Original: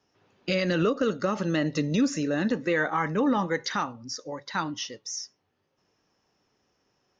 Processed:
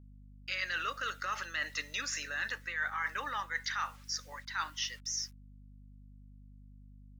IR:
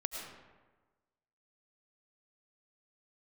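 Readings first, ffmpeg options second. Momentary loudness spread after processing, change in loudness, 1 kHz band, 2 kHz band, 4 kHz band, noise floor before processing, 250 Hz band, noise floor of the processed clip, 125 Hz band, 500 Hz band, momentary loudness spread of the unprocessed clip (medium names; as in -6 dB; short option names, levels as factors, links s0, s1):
5 LU, -8.5 dB, -7.0 dB, -2.0 dB, -2.5 dB, -75 dBFS, -30.0 dB, -54 dBFS, -19.0 dB, -23.0 dB, 11 LU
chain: -af "agate=range=0.0224:threshold=0.00251:ratio=3:detection=peak,acrusher=bits=9:mix=0:aa=0.000001,highpass=f=1600:t=q:w=1.8,areverse,acompressor=threshold=0.0251:ratio=6,areverse,aeval=exprs='val(0)+0.00224*(sin(2*PI*50*n/s)+sin(2*PI*2*50*n/s)/2+sin(2*PI*3*50*n/s)/3+sin(2*PI*4*50*n/s)/4+sin(2*PI*5*50*n/s)/5)':c=same"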